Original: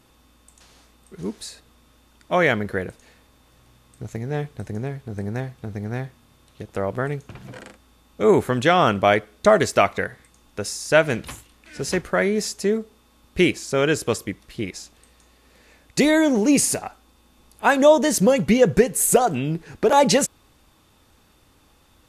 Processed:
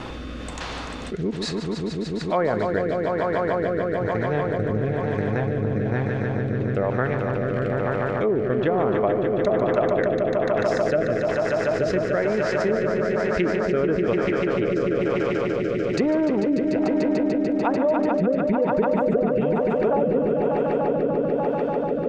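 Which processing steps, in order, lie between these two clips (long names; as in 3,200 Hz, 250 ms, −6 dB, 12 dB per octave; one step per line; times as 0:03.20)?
treble cut that deepens with the level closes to 570 Hz, closed at −12 dBFS
low-shelf EQ 460 Hz −8.5 dB
transient designer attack +3 dB, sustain −8 dB
on a send: echo that builds up and dies away 147 ms, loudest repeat 5, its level −8.5 dB
on the sum: rotating-speaker cabinet horn 1.1 Hz
head-to-tape spacing loss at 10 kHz 29 dB
envelope flattener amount 70%
level −2.5 dB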